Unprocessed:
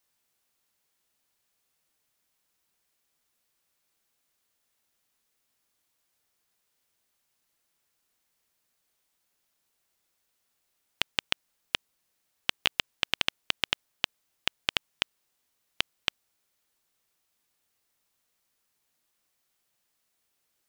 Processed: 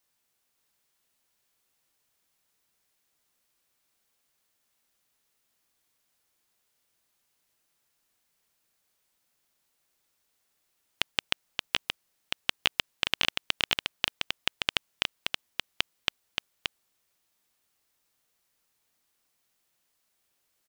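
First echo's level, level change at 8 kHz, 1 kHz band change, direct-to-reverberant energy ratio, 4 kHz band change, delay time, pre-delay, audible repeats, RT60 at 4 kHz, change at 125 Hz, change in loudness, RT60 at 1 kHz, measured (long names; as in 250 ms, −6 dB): −4.5 dB, +1.5 dB, +1.5 dB, no reverb audible, +1.5 dB, 576 ms, no reverb audible, 1, no reverb audible, +1.5 dB, +0.5 dB, no reverb audible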